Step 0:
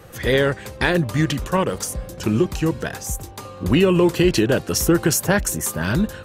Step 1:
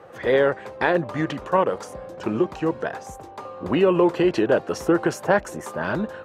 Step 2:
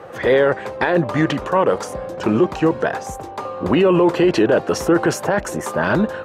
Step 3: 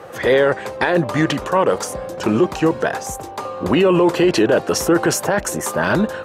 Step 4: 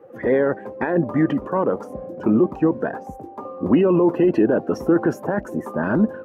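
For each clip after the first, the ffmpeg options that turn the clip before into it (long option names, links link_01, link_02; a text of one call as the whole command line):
ffmpeg -i in.wav -af "bandpass=frequency=740:width_type=q:width=0.99:csg=0,volume=3.5dB" out.wav
ffmpeg -i in.wav -af "alimiter=limit=-15.5dB:level=0:latency=1:release=10,volume=8.5dB" out.wav
ffmpeg -i in.wav -af "highshelf=frequency=4700:gain=10.5" out.wav
ffmpeg -i in.wav -af "equalizer=frequency=250:width_type=o:width=1:gain=10,equalizer=frequency=4000:width_type=o:width=1:gain=-9,equalizer=frequency=8000:width_type=o:width=1:gain=-11,afftdn=noise_reduction=13:noise_floor=-26,volume=-6.5dB" out.wav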